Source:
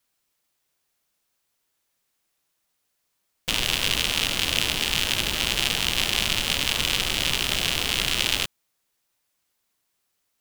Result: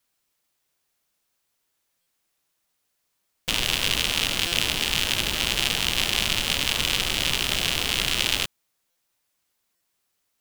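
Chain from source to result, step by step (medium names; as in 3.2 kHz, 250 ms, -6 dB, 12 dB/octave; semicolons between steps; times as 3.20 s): buffer glitch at 2.01/4.47/8.90/9.75 s, samples 256, times 8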